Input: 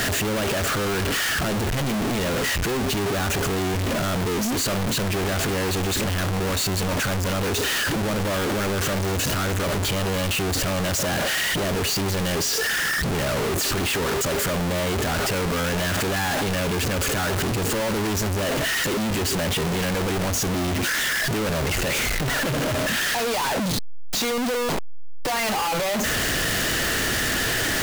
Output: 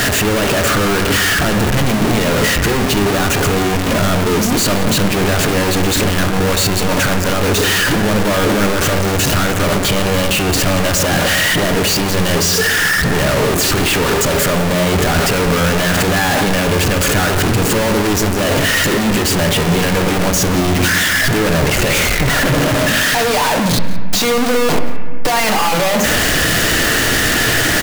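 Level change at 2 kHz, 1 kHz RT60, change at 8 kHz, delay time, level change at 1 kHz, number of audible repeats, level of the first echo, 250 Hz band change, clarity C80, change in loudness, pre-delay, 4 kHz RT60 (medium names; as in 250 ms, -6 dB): +9.5 dB, 1.6 s, +8.5 dB, 175 ms, +9.5 dB, 1, -18.5 dB, +10.0 dB, 9.0 dB, +9.0 dB, 4 ms, 1.4 s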